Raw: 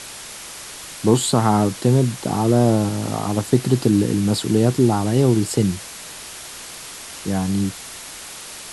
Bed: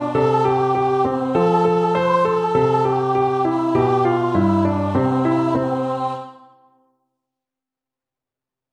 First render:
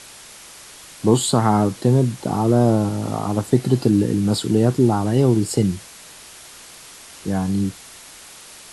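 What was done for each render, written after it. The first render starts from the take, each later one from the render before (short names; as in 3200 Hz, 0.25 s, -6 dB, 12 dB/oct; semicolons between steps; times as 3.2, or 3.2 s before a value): noise print and reduce 6 dB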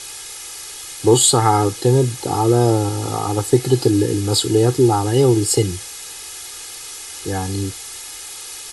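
bell 8900 Hz +7.5 dB 2.9 oct; comb 2.4 ms, depth 84%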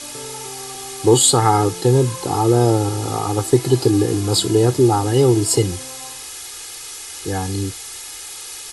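add bed -18.5 dB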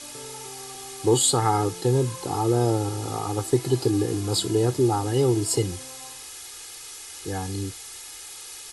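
gain -7 dB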